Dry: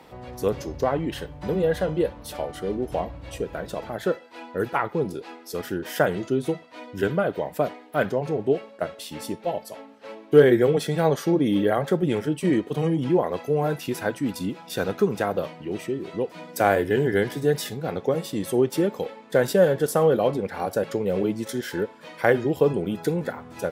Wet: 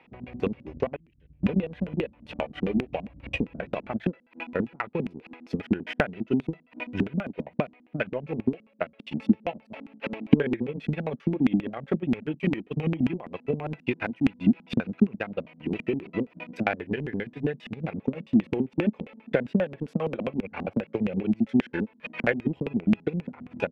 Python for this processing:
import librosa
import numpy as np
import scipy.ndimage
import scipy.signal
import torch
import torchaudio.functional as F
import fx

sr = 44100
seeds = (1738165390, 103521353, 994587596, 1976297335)

y = fx.recorder_agc(x, sr, target_db=-11.5, rise_db_per_s=16.0, max_gain_db=30)
y = fx.tone_stack(y, sr, knobs='10-0-1', at=(0.96, 1.43))
y = fx.filter_lfo_lowpass(y, sr, shape='square', hz=7.5, low_hz=230.0, high_hz=2500.0, q=5.3)
y = fx.transient(y, sr, attack_db=9, sustain_db=-8)
y = fx.band_squash(y, sr, depth_pct=40, at=(19.87, 21.45))
y = y * 10.0 ** (-12.5 / 20.0)